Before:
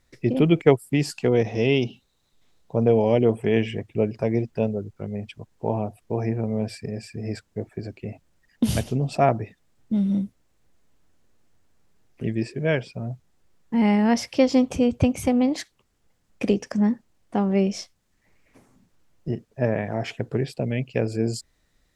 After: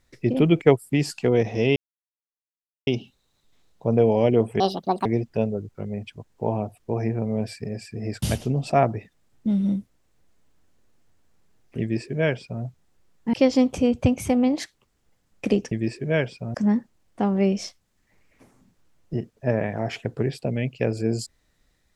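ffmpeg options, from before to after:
ffmpeg -i in.wav -filter_complex "[0:a]asplit=8[link_01][link_02][link_03][link_04][link_05][link_06][link_07][link_08];[link_01]atrim=end=1.76,asetpts=PTS-STARTPTS,afade=type=out:start_time=1.756:duration=0.004:curve=hsin,apad=pad_dur=1.11[link_09];[link_02]atrim=start=1.76:end=3.494,asetpts=PTS-STARTPTS,afade=type=in:duration=0.004:curve=hsin[link_10];[link_03]atrim=start=3.49:end=4.27,asetpts=PTS-STARTPTS,asetrate=75852,aresample=44100[link_11];[link_04]atrim=start=4.266:end=7.442[link_12];[link_05]atrim=start=8.678:end=13.792[link_13];[link_06]atrim=start=14.308:end=16.692[link_14];[link_07]atrim=start=12.258:end=13.092[link_15];[link_08]atrim=start=16.688[link_16];[link_09][link_10]concat=n=2:v=0:a=1[link_17];[link_17][link_11]acrossfade=duration=0.004:curve1=hsin:curve2=hsin[link_18];[link_18][link_12]acrossfade=duration=0.004:curve1=hsin:curve2=hsin[link_19];[link_19][link_13]acrossfade=duration=0.004:curve1=hsin:curve2=hsin[link_20];[link_20][link_14]acrossfade=duration=0.004:curve1=hsin:curve2=hsin[link_21];[link_21][link_15]acrossfade=duration=0.004:curve1=hsin:curve2=hsin[link_22];[link_22][link_16]acrossfade=duration=0.004:curve1=hsin:curve2=hsin" out.wav

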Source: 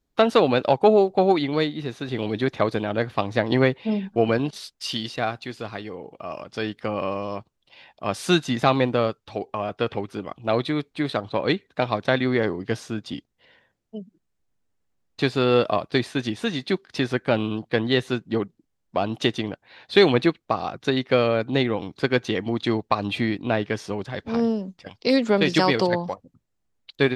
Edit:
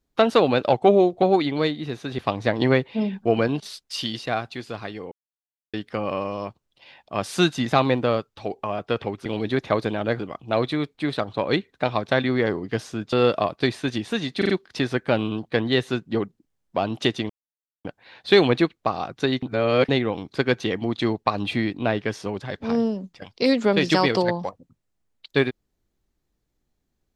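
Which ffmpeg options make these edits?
ffmpeg -i in.wav -filter_complex "[0:a]asplit=15[link_01][link_02][link_03][link_04][link_05][link_06][link_07][link_08][link_09][link_10][link_11][link_12][link_13][link_14][link_15];[link_01]atrim=end=0.724[link_16];[link_02]atrim=start=0.72:end=1.19,asetpts=PTS-STARTPTS,asetrate=41013,aresample=44100,atrim=end_sample=22287,asetpts=PTS-STARTPTS[link_17];[link_03]atrim=start=1.186:end=2.152[link_18];[link_04]atrim=start=3.088:end=6.02,asetpts=PTS-STARTPTS,afade=type=out:start_time=2.928:duration=0.004:curve=hsin[link_19];[link_05]atrim=start=6.02:end=6.64,asetpts=PTS-STARTPTS,volume=0[link_20];[link_06]atrim=start=6.64:end=10.162,asetpts=PTS-STARTPTS,afade=type=in:duration=0.004:curve=hsin[link_21];[link_07]atrim=start=2.148:end=3.092[link_22];[link_08]atrim=start=10.158:end=13.092[link_23];[link_09]atrim=start=15.438:end=16.732[link_24];[link_10]atrim=start=16.688:end=16.732[link_25];[link_11]atrim=start=16.688:end=16.732[link_26];[link_12]atrim=start=16.688:end=19.49,asetpts=PTS-STARTPTS,afade=type=out:start_time=2.798:duration=0.004:curve=hsin,apad=pad_dur=0.55[link_27];[link_13]atrim=start=19.49:end=21.072,asetpts=PTS-STARTPTS,afade=type=in:duration=0.004:curve=hsin[link_28];[link_14]atrim=start=21.068:end=21.532,asetpts=PTS-STARTPTS,areverse[link_29];[link_15]atrim=start=21.528[link_30];[link_16][link_17]acrossfade=duration=0.004:curve1=hsin:curve2=hsin[link_31];[link_31][link_18]acrossfade=duration=0.004:curve1=hsin:curve2=hsin[link_32];[link_19][link_20][link_21]concat=n=3:v=0:a=1[link_33];[link_32][link_33]acrossfade=duration=0.004:curve1=hsin:curve2=hsin[link_34];[link_34][link_22]acrossfade=duration=0.004:curve1=hsin:curve2=hsin[link_35];[link_35][link_23]acrossfade=duration=0.004:curve1=hsin:curve2=hsin[link_36];[link_36][link_24]acrossfade=duration=0.004:curve1=hsin:curve2=hsin[link_37];[link_37][link_25]acrossfade=duration=0.004:curve1=hsin:curve2=hsin[link_38];[link_38][link_26]acrossfade=duration=0.004:curve1=hsin:curve2=hsin[link_39];[link_27][link_28]concat=n=2:v=0:a=1[link_40];[link_39][link_40]acrossfade=duration=0.004:curve1=hsin:curve2=hsin[link_41];[link_41][link_29]acrossfade=duration=0.004:curve1=hsin:curve2=hsin[link_42];[link_42][link_30]acrossfade=duration=0.004:curve1=hsin:curve2=hsin" out.wav

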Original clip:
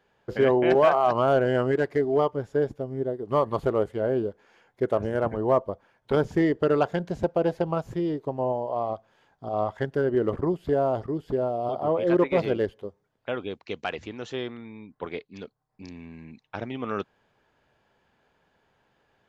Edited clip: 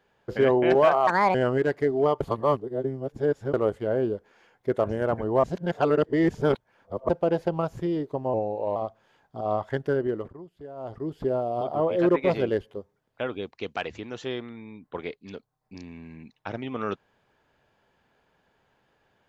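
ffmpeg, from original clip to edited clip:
ffmpeg -i in.wav -filter_complex "[0:a]asplit=11[link_01][link_02][link_03][link_04][link_05][link_06][link_07][link_08][link_09][link_10][link_11];[link_01]atrim=end=1.074[link_12];[link_02]atrim=start=1.07:end=1.48,asetpts=PTS-STARTPTS,asetrate=65709,aresample=44100[link_13];[link_03]atrim=start=1.476:end=2.342[link_14];[link_04]atrim=start=2.338:end=3.672,asetpts=PTS-STARTPTS,areverse[link_15];[link_05]atrim=start=3.668:end=5.572[link_16];[link_06]atrim=start=5.568:end=7.222,asetpts=PTS-STARTPTS,areverse[link_17];[link_07]atrim=start=7.218:end=8.474[link_18];[link_08]atrim=start=8.47:end=8.84,asetpts=PTS-STARTPTS,asetrate=38367,aresample=44100,atrim=end_sample=18755,asetpts=PTS-STARTPTS[link_19];[link_09]atrim=start=8.836:end=10.42,asetpts=PTS-STARTPTS,afade=type=out:start_time=1.164:duration=0.42:silence=0.125893[link_20];[link_10]atrim=start=10.42:end=10.83,asetpts=PTS-STARTPTS,volume=-18dB[link_21];[link_11]atrim=start=10.83,asetpts=PTS-STARTPTS,afade=type=in:duration=0.42:silence=0.125893[link_22];[link_12][link_13]acrossfade=duration=0.004:curve1=hsin:curve2=hsin[link_23];[link_23][link_14]acrossfade=duration=0.004:curve1=hsin:curve2=hsin[link_24];[link_24][link_15]acrossfade=duration=0.004:curve1=hsin:curve2=hsin[link_25];[link_25][link_16]acrossfade=duration=0.004:curve1=hsin:curve2=hsin[link_26];[link_26][link_17]acrossfade=duration=0.004:curve1=hsin:curve2=hsin[link_27];[link_27][link_18]acrossfade=duration=0.004:curve1=hsin:curve2=hsin[link_28];[link_28][link_19]acrossfade=duration=0.004:curve1=hsin:curve2=hsin[link_29];[link_20][link_21][link_22]concat=n=3:v=0:a=1[link_30];[link_29][link_30]acrossfade=duration=0.004:curve1=hsin:curve2=hsin" out.wav

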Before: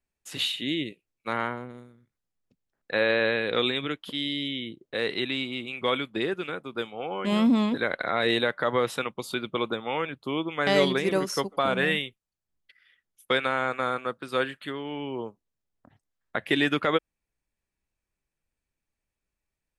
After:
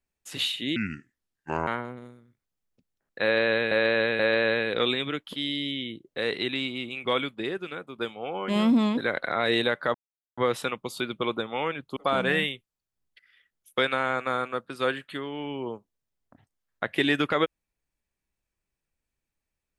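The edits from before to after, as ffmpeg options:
ffmpeg -i in.wav -filter_complex "[0:a]asplit=9[link_01][link_02][link_03][link_04][link_05][link_06][link_07][link_08][link_09];[link_01]atrim=end=0.764[link_10];[link_02]atrim=start=0.76:end=1.4,asetpts=PTS-STARTPTS,asetrate=30870,aresample=44100[link_11];[link_03]atrim=start=1.396:end=3.442[link_12];[link_04]atrim=start=2.958:end=3.442[link_13];[link_05]atrim=start=2.958:end=6.112[link_14];[link_06]atrim=start=6.108:end=6.752,asetpts=PTS-STARTPTS,volume=-3dB[link_15];[link_07]atrim=start=6.748:end=8.71,asetpts=PTS-STARTPTS,afade=type=out:start_time=1.958:duration=0.004:curve=hsin,apad=pad_dur=0.43[link_16];[link_08]atrim=start=8.71:end=10.302,asetpts=PTS-STARTPTS,afade=type=in:duration=0.004:curve=hsin[link_17];[link_09]atrim=start=11.488[link_18];[link_10][link_11]acrossfade=duration=0.004:curve1=hsin:curve2=hsin[link_19];[link_19][link_12]acrossfade=duration=0.004:curve1=hsin:curve2=hsin[link_20];[link_20][link_13]acrossfade=duration=0.004:curve1=hsin:curve2=hsin[link_21];[link_21][link_14]acrossfade=duration=0.004:curve1=hsin:curve2=hsin[link_22];[link_22][link_15]acrossfade=duration=0.004:curve1=hsin:curve2=hsin[link_23];[link_16][link_17]concat=n=2:v=0:a=1[link_24];[link_23][link_24]acrossfade=duration=0.004:curve1=hsin:curve2=hsin[link_25];[link_25][link_18]acrossfade=duration=0.004:curve1=hsin:curve2=hsin" out.wav

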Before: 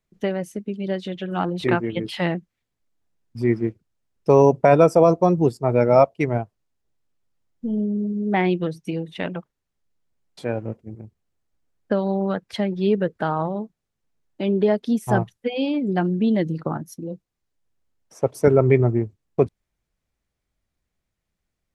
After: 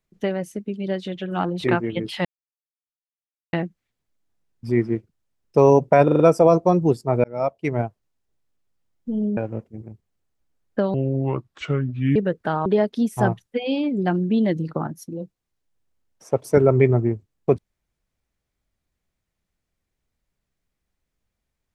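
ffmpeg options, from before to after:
ffmpeg -i in.wav -filter_complex "[0:a]asplit=11[link_01][link_02][link_03][link_04][link_05][link_06][link_07][link_08][link_09][link_10][link_11];[link_01]atrim=end=2.25,asetpts=PTS-STARTPTS,afade=type=out:start_time=2.246:duration=0.004:curve=hsin,apad=pad_dur=1.28[link_12];[link_02]atrim=start=2.25:end=4.802,asetpts=PTS-STARTPTS,afade=type=in:duration=0.004:curve=hsin[link_13];[link_03]atrim=start=4.758:end=4.802[link_14];[link_04]atrim=start=4.758:end=4.802[link_15];[link_05]atrim=start=4.758:end=4.802[link_16];[link_06]atrim=start=4.758:end=5.8,asetpts=PTS-STARTPTS,afade=type=out:start_time=1.038:duration=0.004:curve=hsin[link_17];[link_07]atrim=start=5.8:end=7.932,asetpts=PTS-STARTPTS,afade=type=in:duration=0.55[link_18];[link_08]atrim=start=10.498:end=12.074[link_19];[link_09]atrim=start=12.07:end=12.91,asetpts=PTS-STARTPTS,asetrate=30429,aresample=44100[link_20];[link_10]atrim=start=12.906:end=13.412[link_21];[link_11]atrim=start=14.558[link_22];[link_12][link_13]concat=n=2:v=0:a=1[link_23];[link_23][link_14]acrossfade=duration=0.004:curve1=hsin:curve2=hsin[link_24];[link_24][link_15]acrossfade=duration=0.004:curve1=hsin:curve2=hsin[link_25];[link_25][link_16]acrossfade=duration=0.004:curve1=hsin:curve2=hsin[link_26];[link_17][link_18]concat=n=2:v=0:a=1[link_27];[link_26][link_27]acrossfade=duration=0.004:curve1=hsin:curve2=hsin[link_28];[link_28][link_19]acrossfade=duration=0.004:curve1=hsin:curve2=hsin[link_29];[link_29][link_20]acrossfade=duration=0.004:curve1=hsin:curve2=hsin[link_30];[link_30][link_21]acrossfade=duration=0.004:curve1=hsin:curve2=hsin[link_31];[link_31][link_22]acrossfade=duration=0.004:curve1=hsin:curve2=hsin" out.wav

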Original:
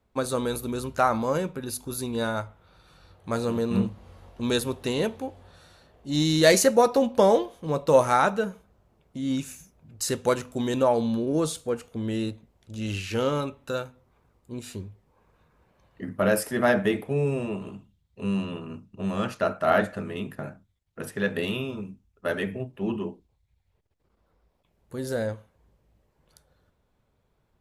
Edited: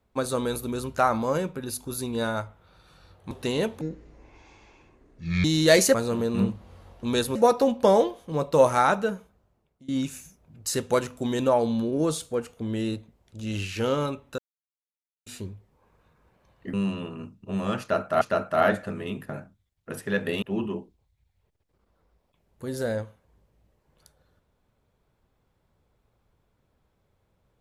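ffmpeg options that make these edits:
ffmpeg -i in.wav -filter_complex "[0:a]asplit=12[link_01][link_02][link_03][link_04][link_05][link_06][link_07][link_08][link_09][link_10][link_11][link_12];[link_01]atrim=end=3.312[link_13];[link_02]atrim=start=4.718:end=5.224[link_14];[link_03]atrim=start=5.22:end=6.2,asetpts=PTS-STARTPTS,asetrate=26460,aresample=44100[link_15];[link_04]atrim=start=6.196:end=6.702[link_16];[link_05]atrim=start=3.308:end=4.722[link_17];[link_06]atrim=start=6.698:end=9.23,asetpts=PTS-STARTPTS,afade=type=out:start_time=1.762:duration=0.77:silence=0.0891251[link_18];[link_07]atrim=start=9.23:end=13.73,asetpts=PTS-STARTPTS,afade=type=in:duration=0.004:curve=hsin:silence=0.0891251,afade=type=out:start_time=4.496:duration=0.004:curve=hsin[link_19];[link_08]atrim=start=13.73:end=14.61,asetpts=PTS-STARTPTS,volume=0[link_20];[link_09]atrim=start=14.61:end=16.082,asetpts=PTS-STARTPTS,afade=type=in:duration=0.004:curve=hsin[link_21];[link_10]atrim=start=18.238:end=19.722[link_22];[link_11]atrim=start=19.308:end=21.522[link_23];[link_12]atrim=start=22.728[link_24];[link_13][link_14]acrossfade=duration=0.004:curve1=hsin:curve2=hsin[link_25];[link_25][link_15]acrossfade=duration=0.004:curve1=hsin:curve2=hsin[link_26];[link_26][link_16]acrossfade=duration=0.004:curve1=hsin:curve2=hsin[link_27];[link_27][link_17]acrossfade=duration=0.004:curve1=hsin:curve2=hsin[link_28];[link_18][link_19][link_20][link_21]concat=n=4:v=0:a=1[link_29];[link_28][link_29]acrossfade=duration=0.004:curve1=hsin:curve2=hsin[link_30];[link_30][link_22]acrossfade=duration=0.004:curve1=hsin:curve2=hsin[link_31];[link_31][link_23]acrossfade=duration=0.004:curve1=hsin:curve2=hsin[link_32];[link_32][link_24]acrossfade=duration=0.004:curve1=hsin:curve2=hsin" out.wav

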